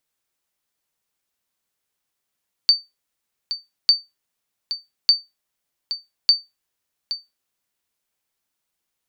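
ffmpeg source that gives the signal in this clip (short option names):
-f lavfi -i "aevalsrc='0.562*(sin(2*PI*4580*mod(t,1.2))*exp(-6.91*mod(t,1.2)/0.2)+0.237*sin(2*PI*4580*max(mod(t,1.2)-0.82,0))*exp(-6.91*max(mod(t,1.2)-0.82,0)/0.2))':d=4.8:s=44100"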